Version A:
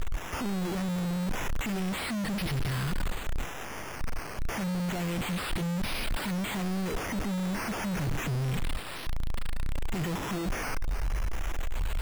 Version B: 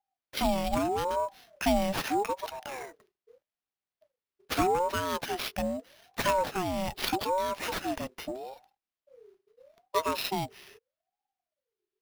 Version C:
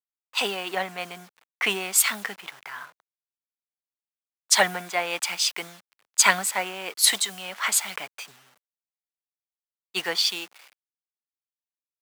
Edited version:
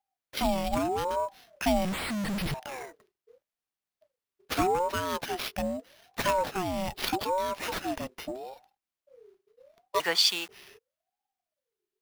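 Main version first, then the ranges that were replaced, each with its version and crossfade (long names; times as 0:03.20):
B
0:01.85–0:02.54: punch in from A
0:10.00–0:10.49: punch in from C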